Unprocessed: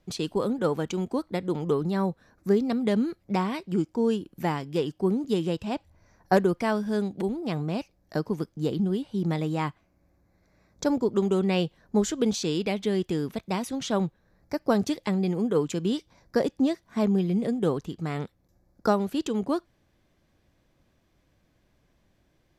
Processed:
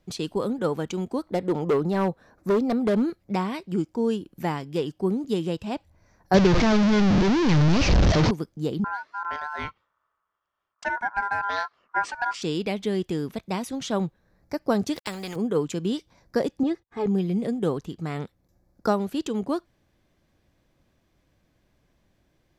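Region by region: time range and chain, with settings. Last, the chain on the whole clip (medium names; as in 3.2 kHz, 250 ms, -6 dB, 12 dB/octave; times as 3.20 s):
1.26–3.10 s: peaking EQ 680 Hz +7 dB 2.3 oct + hard clipper -17.5 dBFS
6.34–8.31 s: one-bit delta coder 32 kbps, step -18 dBFS + bass shelf 240 Hz +10.5 dB
8.84–12.42 s: ring modulator 1.2 kHz + distance through air 88 m + three bands expanded up and down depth 40%
14.96–15.36 s: small samples zeroed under -50.5 dBFS + spectrum-flattening compressor 2:1
16.63–17.06 s: low-pass 1.5 kHz 6 dB/octave + gate -57 dBFS, range -34 dB + comb 2.4 ms, depth 78%
whole clip: none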